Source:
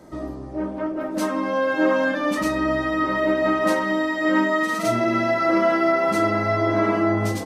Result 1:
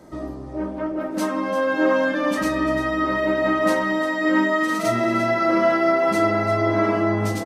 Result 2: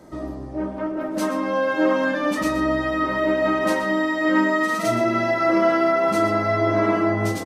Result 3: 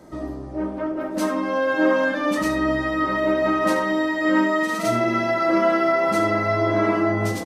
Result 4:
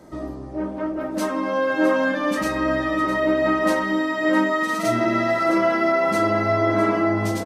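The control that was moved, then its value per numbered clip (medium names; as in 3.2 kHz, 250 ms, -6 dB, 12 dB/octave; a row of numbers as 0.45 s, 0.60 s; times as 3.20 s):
delay, time: 346 ms, 122 ms, 74 ms, 659 ms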